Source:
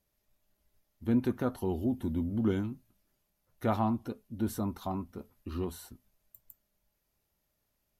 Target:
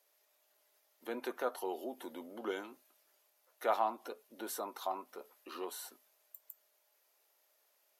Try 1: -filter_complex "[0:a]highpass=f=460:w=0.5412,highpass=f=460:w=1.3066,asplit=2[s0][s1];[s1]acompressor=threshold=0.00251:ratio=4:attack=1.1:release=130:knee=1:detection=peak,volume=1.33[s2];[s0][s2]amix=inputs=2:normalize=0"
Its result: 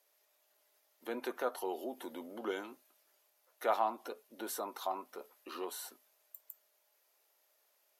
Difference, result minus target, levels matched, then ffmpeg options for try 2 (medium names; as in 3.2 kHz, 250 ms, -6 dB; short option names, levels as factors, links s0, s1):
compression: peak gain reduction -4.5 dB
-filter_complex "[0:a]highpass=f=460:w=0.5412,highpass=f=460:w=1.3066,asplit=2[s0][s1];[s1]acompressor=threshold=0.00126:ratio=4:attack=1.1:release=130:knee=1:detection=peak,volume=1.33[s2];[s0][s2]amix=inputs=2:normalize=0"